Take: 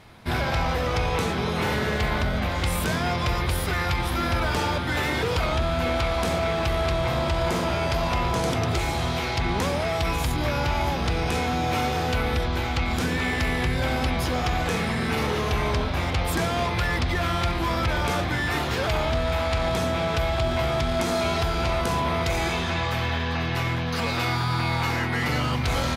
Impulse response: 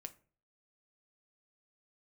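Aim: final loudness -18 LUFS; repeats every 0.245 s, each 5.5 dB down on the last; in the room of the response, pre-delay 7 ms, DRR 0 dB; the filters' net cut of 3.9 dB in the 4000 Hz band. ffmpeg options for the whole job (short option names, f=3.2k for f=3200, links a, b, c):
-filter_complex "[0:a]equalizer=f=4k:t=o:g=-5,aecho=1:1:245|490|735|980|1225|1470|1715:0.531|0.281|0.149|0.079|0.0419|0.0222|0.0118,asplit=2[a][b];[1:a]atrim=start_sample=2205,adelay=7[c];[b][c]afir=irnorm=-1:irlink=0,volume=5.5dB[d];[a][d]amix=inputs=2:normalize=0,volume=3.5dB"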